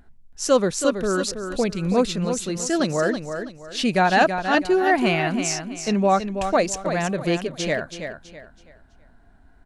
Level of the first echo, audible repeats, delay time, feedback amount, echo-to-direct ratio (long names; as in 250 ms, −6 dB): −8.0 dB, 3, 327 ms, 31%, −7.5 dB